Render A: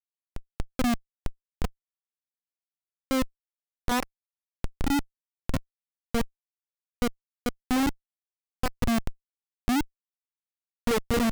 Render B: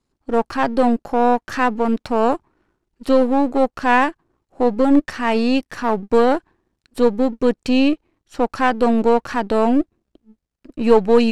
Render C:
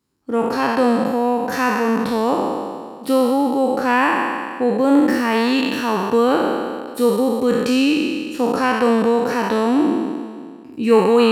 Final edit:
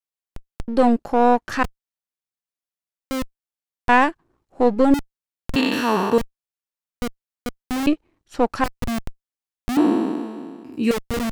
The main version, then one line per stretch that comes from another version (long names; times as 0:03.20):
A
0:00.68–0:01.63: punch in from B
0:03.89–0:04.94: punch in from B
0:05.56–0:06.18: punch in from C
0:07.87–0:08.64: punch in from B
0:09.77–0:10.91: punch in from C